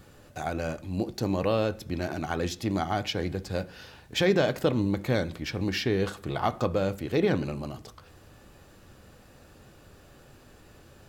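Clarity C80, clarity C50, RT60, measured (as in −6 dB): 24.5 dB, 20.0 dB, 0.45 s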